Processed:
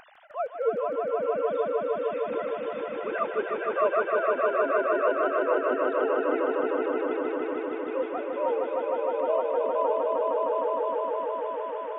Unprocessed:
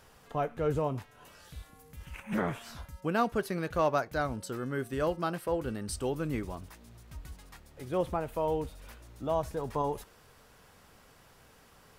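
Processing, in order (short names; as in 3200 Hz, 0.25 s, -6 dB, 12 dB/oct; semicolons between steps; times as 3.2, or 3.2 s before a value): sine-wave speech; upward compressor, threshold -43 dBFS; swelling echo 0.154 s, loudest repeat 5, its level -3 dB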